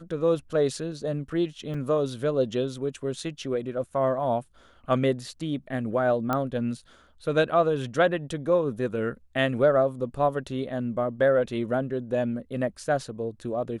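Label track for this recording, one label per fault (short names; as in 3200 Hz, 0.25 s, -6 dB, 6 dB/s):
1.740000	1.740000	gap 4.6 ms
6.330000	6.330000	pop -13 dBFS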